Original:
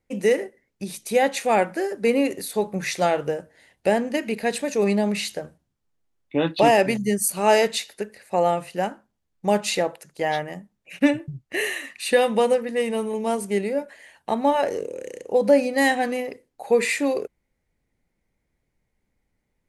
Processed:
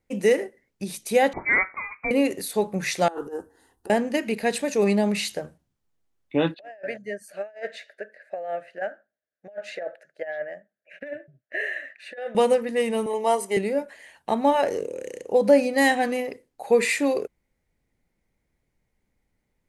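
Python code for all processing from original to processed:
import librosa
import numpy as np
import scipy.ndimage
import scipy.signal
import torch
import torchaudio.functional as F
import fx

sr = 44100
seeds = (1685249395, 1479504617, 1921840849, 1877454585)

y = fx.chain(x, sr, fx.highpass(hz=610.0, slope=24),
    fx.freq_invert(carrier_hz=2800), at=(1.33, 2.11))
y = fx.chain(y, sr, fx.peak_eq(hz=4500.0, db=-9.0, octaves=2.0),
    fx.fixed_phaser(hz=600.0, stages=6),
    fx.over_compress(threshold_db=-32.0, ratio=-0.5), at=(3.08, 3.9))
y = fx.chain(y, sr, fx.double_bandpass(hz=1000.0, octaves=1.4),
    fx.over_compress(threshold_db=-31.0, ratio=-0.5), at=(6.54, 12.35))
y = fx.chain(y, sr, fx.highpass_res(hz=480.0, q=2.7),
    fx.comb(ms=1.0, depth=0.6), at=(13.06, 13.57))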